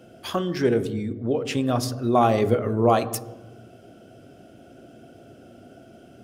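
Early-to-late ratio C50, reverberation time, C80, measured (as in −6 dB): 14.5 dB, 1.1 s, 16.0 dB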